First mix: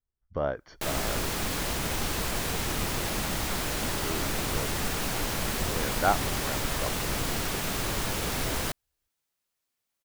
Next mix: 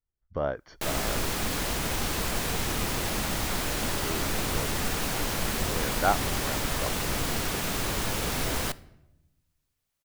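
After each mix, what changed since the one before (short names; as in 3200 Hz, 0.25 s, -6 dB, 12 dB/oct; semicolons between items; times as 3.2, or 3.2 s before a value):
reverb: on, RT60 0.95 s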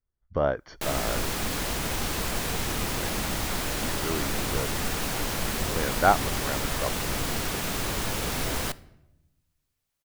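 speech +4.5 dB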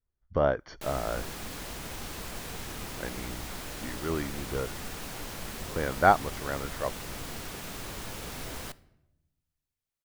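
background -10.0 dB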